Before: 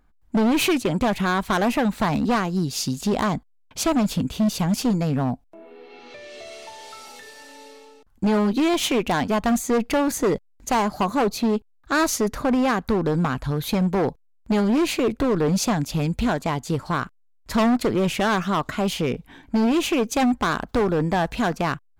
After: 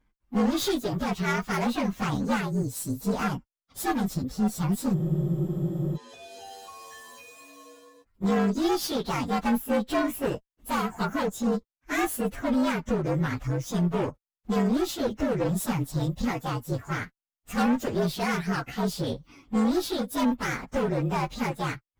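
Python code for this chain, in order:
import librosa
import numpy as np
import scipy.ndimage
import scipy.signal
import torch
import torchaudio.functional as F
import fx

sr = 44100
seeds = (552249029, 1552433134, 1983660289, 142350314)

y = fx.partial_stretch(x, sr, pct=117)
y = fx.tube_stage(y, sr, drive_db=15.0, bias=0.55)
y = fx.spec_freeze(y, sr, seeds[0], at_s=4.96, hold_s=1.0)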